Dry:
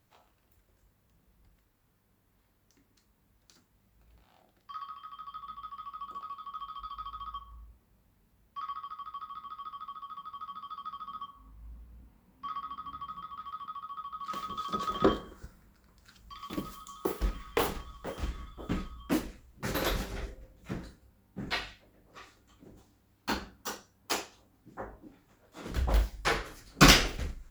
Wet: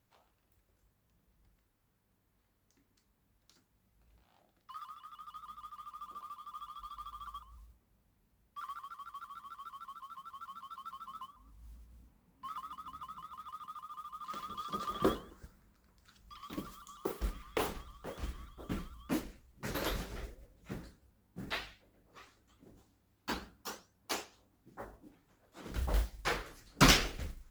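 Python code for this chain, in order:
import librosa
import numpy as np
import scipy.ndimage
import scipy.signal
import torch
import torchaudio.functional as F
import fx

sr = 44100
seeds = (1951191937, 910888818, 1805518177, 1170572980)

y = fx.mod_noise(x, sr, seeds[0], snr_db=22)
y = fx.vibrato_shape(y, sr, shape='saw_up', rate_hz=6.6, depth_cents=160.0)
y = y * librosa.db_to_amplitude(-5.5)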